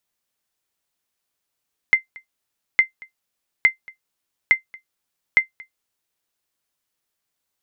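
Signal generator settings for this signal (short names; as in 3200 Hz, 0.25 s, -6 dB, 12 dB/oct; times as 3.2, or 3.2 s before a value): sonar ping 2080 Hz, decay 0.12 s, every 0.86 s, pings 5, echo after 0.23 s, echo -25.5 dB -4.5 dBFS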